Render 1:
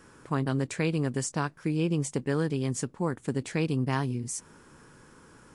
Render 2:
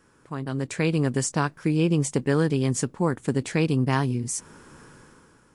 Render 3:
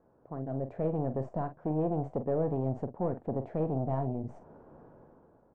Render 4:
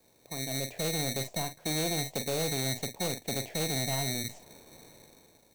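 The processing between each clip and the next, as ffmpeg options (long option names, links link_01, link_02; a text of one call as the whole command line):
ffmpeg -i in.wav -af "dynaudnorm=framelen=120:gausssize=11:maxgain=12.5dB,volume=-6dB" out.wav
ffmpeg -i in.wav -filter_complex "[0:a]aeval=exprs='(tanh(14.1*val(0)+0.35)-tanh(0.35))/14.1':channel_layout=same,lowpass=frequency=680:width_type=q:width=4.9,asplit=2[link_01][link_02];[link_02]adelay=45,volume=-10.5dB[link_03];[link_01][link_03]amix=inputs=2:normalize=0,volume=-6dB" out.wav
ffmpeg -i in.wav -filter_complex "[0:a]acrossover=split=260|430[link_01][link_02][link_03];[link_01]acrusher=samples=22:mix=1:aa=0.000001[link_04];[link_04][link_02][link_03]amix=inputs=3:normalize=0,aexciter=amount=12:drive=4.6:freq=2100,asoftclip=type=hard:threshold=-24dB,volume=-1.5dB" out.wav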